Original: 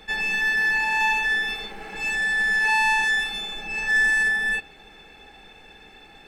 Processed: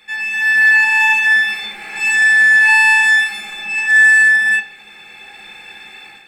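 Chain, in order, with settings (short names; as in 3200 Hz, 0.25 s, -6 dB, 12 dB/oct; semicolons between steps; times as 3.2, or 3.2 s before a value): tilt shelf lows -7.5 dB, about 800 Hz; AGC gain up to 12 dB; reverb RT60 0.40 s, pre-delay 3 ms, DRR 2 dB; gain -6.5 dB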